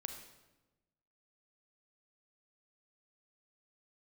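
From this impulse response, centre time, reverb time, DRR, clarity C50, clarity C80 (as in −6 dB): 25 ms, 1.1 s, 5.0 dB, 6.5 dB, 8.5 dB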